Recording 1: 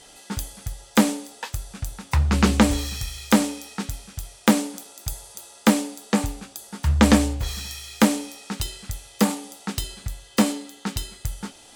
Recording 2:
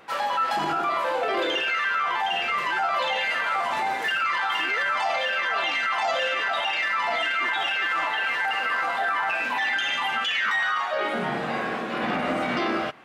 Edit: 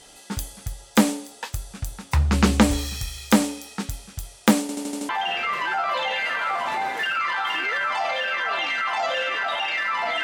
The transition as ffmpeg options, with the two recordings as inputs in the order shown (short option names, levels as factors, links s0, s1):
-filter_complex "[0:a]apad=whole_dur=10.23,atrim=end=10.23,asplit=6[s0][s1][s2][s3][s4][s5];[s0]atrim=end=4.692[s6];[s1]atrim=start=4.608:end=4.692[s7];[s2]atrim=start=4.608:end=4.692[s8];[s3]atrim=start=4.608:end=4.692[s9];[s4]atrim=start=4.608:end=4.692[s10];[s5]atrim=start=4.608:end=4.692[s11];[1:a]atrim=start=2.138:end=7.28[s12];[s6][s7]acrossfade=d=0.004:c1=hsin:c2=hsin[s13];[s13][s8]acrossfade=d=0.004:c1=hsin:c2=hsin[s14];[s14][s9]acrossfade=d=0.004:c1=hsin:c2=hsin[s15];[s15][s10]acrossfade=d=0.004:c1=hsin:c2=hsin[s16];[s16][s11]acrossfade=d=0.004:c1=hsin:c2=hsin[s17];[s17][s12]acrossfade=d=0.004:c1=hsin:c2=hsin"